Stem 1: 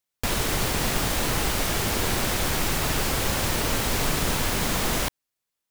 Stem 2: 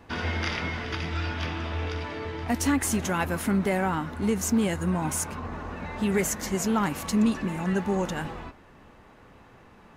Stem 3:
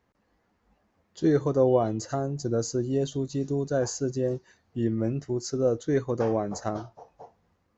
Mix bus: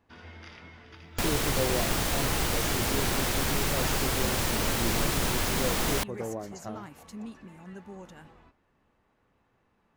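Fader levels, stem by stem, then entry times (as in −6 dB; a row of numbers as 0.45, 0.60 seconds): −3.0, −18.0, −9.5 decibels; 0.95, 0.00, 0.00 seconds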